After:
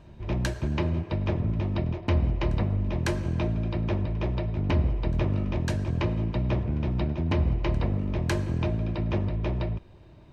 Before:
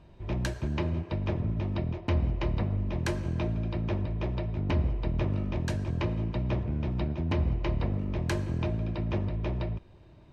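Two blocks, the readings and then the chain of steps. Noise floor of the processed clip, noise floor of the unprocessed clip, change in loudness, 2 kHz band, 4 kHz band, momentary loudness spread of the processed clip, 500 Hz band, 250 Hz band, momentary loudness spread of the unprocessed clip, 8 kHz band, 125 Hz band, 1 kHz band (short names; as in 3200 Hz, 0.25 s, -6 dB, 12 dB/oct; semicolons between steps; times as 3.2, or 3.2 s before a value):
-50 dBFS, -53 dBFS, +3.0 dB, +3.0 dB, +3.0 dB, 3 LU, +3.0 dB, +3.0 dB, 3 LU, n/a, +3.0 dB, +3.0 dB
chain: reverse echo 0.552 s -23.5 dB; gain +3 dB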